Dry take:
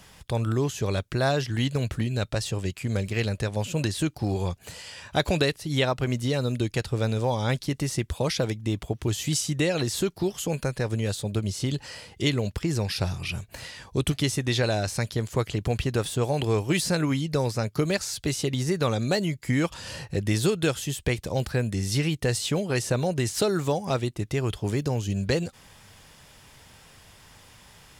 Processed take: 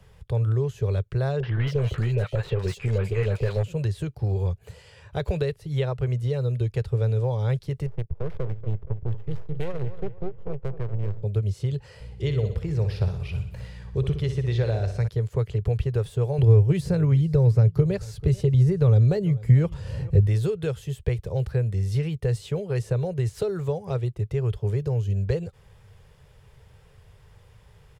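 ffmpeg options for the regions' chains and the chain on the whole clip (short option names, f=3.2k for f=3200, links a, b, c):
-filter_complex "[0:a]asettb=1/sr,asplit=3[a][b][c];[a]atrim=end=1.404[d];[b]atrim=start=1.4:end=3.63,asetpts=PTS-STARTPTS,afade=t=in:d=0.004:c=qsin,afade=t=out:st=2.226:d=0.004:c=qsin,asplit=2[e][f];[f]highpass=f=720:p=1,volume=23dB,asoftclip=type=tanh:threshold=-13.5dB[g];[e][g]amix=inputs=2:normalize=0,lowpass=f=3.1k:p=1,volume=-6dB,acrossover=split=740|3400[h][i][j];[i]adelay=30[k];[j]adelay=270[l];[h][k][l]amix=inputs=3:normalize=0,atrim=end_sample=98343[m];[c]atrim=start=3.626[n];[d][m]acrossfade=d=0.004:c1=hsin:c2=qsin[o];[o][n]acrossfade=d=0.004:c1=qsin:c2=hsin,asettb=1/sr,asplit=3[p][q][r];[p]atrim=end=7.864[s];[q]atrim=start=7.86:end=11.23,asetpts=PTS-STARTPTS,afade=t=in:d=0.004:c=qsin,afade=t=out:st=3.366:d=0.004:c=qsin,aeval=exprs='max(val(0),0)':c=same,adynamicsmooth=sensitivity=4:basefreq=530,asplit=2[t][u];[u]adelay=236,lowpass=f=2.9k:p=1,volume=-12.5dB,asplit=2[v][w];[w]adelay=236,lowpass=f=2.9k:p=1,volume=0.38,asplit=2[x][y];[y]adelay=236,lowpass=f=2.9k:p=1,volume=0.38,asplit=2[z][aa];[aa]adelay=236,lowpass=f=2.9k:p=1,volume=0.38[ab];[t][v][x][z][ab]amix=inputs=5:normalize=0,atrim=end_sample=148617[ac];[r]atrim=start=11.226[ad];[s][ac]acrossfade=d=0.004:c1=hsin:c2=qsin[ae];[ae][ad]acrossfade=d=0.004:c1=qsin:c2=hsin,asettb=1/sr,asplit=3[af][ag][ah];[af]atrim=end=12.004[ai];[ag]atrim=start=12:end=15.08,asetpts=PTS-STARTPTS,afade=t=in:d=0.004:c=qsin,afade=t=out:st=3.076:d=0.004:c=qsin,acrossover=split=6500[aj][ak];[ak]acompressor=threshold=-47dB:ratio=4:attack=1:release=60[al];[aj][al]amix=inputs=2:normalize=0,aeval=exprs='val(0)+0.00891*(sin(2*PI*60*n/s)+sin(2*PI*2*60*n/s)/2+sin(2*PI*3*60*n/s)/3+sin(2*PI*4*60*n/s)/4+sin(2*PI*5*60*n/s)/5)':c=same,aecho=1:1:61|122|183|244|305|366|427:0.355|0.199|0.111|0.0623|0.0349|0.0195|0.0109,atrim=end_sample=135828[am];[ah]atrim=start=15.076[an];[ai][am]acrossfade=d=0.004:c1=hsin:c2=qsin[ao];[ao][an]acrossfade=d=0.004:c1=qsin:c2=hsin,asettb=1/sr,asplit=3[ap][aq][ar];[ap]atrim=end=16.384[as];[aq]atrim=start=16.38:end=20.27,asetpts=PTS-STARTPTS,afade=t=in:d=0.004:c=qsin,afade=t=out:st=3.886:d=0.004:c=qsin,lowshelf=f=410:g=9.5,aecho=1:1:440:0.0794,atrim=end_sample=171549[at];[ar]atrim=start=20.266[au];[as][at]acrossfade=d=0.004:c1=hsin:c2=qsin[av];[av][au]acrossfade=d=0.004:c1=qsin:c2=hsin,firequalizer=gain_entry='entry(120,0);entry(270,-23);entry(420,-2);entry(660,-12);entry(5700,-21);entry(14000,-19)':delay=0.05:min_phase=1,acrossover=split=160[aw][ax];[ax]acompressor=threshold=-29dB:ratio=2[ay];[aw][ay]amix=inputs=2:normalize=0,volume=5dB"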